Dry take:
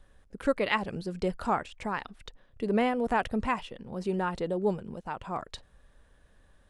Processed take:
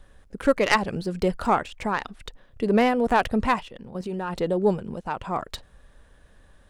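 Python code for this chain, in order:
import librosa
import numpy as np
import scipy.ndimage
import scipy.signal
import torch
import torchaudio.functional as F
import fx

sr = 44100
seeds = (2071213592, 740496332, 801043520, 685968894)

y = fx.tracing_dist(x, sr, depth_ms=0.11)
y = fx.level_steps(y, sr, step_db=12, at=(3.59, 4.35), fade=0.02)
y = y * librosa.db_to_amplitude(6.5)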